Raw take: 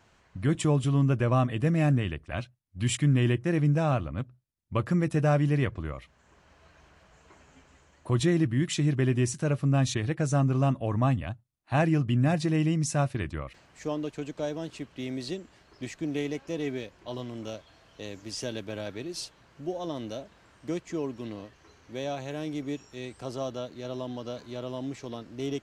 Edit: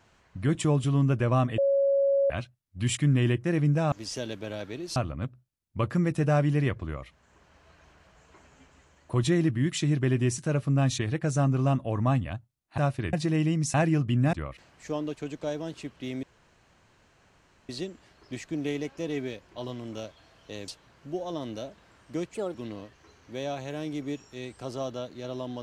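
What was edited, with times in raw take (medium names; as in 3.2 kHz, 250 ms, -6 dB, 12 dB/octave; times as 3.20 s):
1.58–2.30 s: bleep 554 Hz -20 dBFS
11.74–12.33 s: swap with 12.94–13.29 s
15.19 s: insert room tone 1.46 s
18.18–19.22 s: move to 3.92 s
20.88–21.15 s: speed 131%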